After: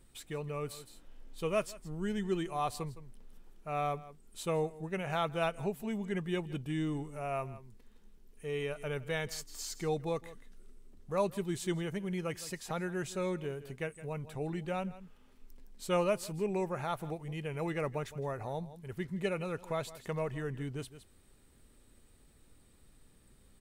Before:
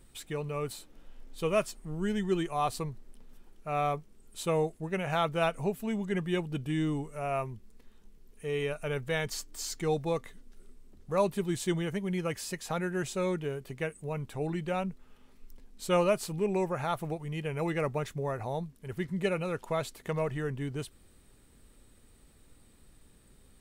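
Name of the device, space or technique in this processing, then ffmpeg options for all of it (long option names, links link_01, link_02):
ducked delay: -filter_complex "[0:a]asplit=3[link_01][link_02][link_03];[link_02]adelay=163,volume=-7dB[link_04];[link_03]apad=whole_len=1048368[link_05];[link_04][link_05]sidechaincompress=threshold=-42dB:ratio=8:attack=10:release=324[link_06];[link_01][link_06]amix=inputs=2:normalize=0,volume=-4dB"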